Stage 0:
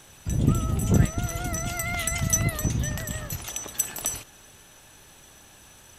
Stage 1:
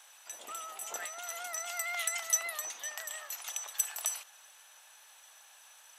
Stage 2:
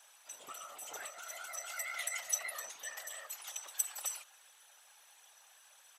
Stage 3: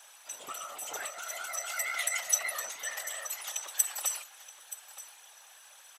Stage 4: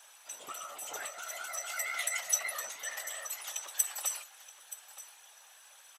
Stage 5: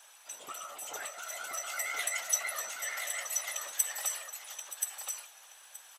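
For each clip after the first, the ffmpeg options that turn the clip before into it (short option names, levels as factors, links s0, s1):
-af "highpass=f=720:w=0.5412,highpass=f=720:w=1.3066,volume=0.562"
-af "aecho=1:1:4.9:0.65,afftfilt=real='hypot(re,im)*cos(2*PI*random(0))':imag='hypot(re,im)*sin(2*PI*random(1))':win_size=512:overlap=0.75"
-af "aecho=1:1:925:0.168,volume=2.24"
-filter_complex "[0:a]asplit=2[s0][s1];[s1]adelay=14,volume=0.251[s2];[s0][s2]amix=inputs=2:normalize=0,volume=0.75"
-af "aecho=1:1:1028:0.596"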